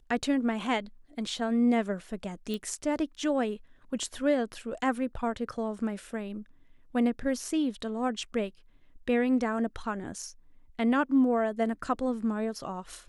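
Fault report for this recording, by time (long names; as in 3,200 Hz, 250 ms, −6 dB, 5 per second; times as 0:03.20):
0:02.54: click −22 dBFS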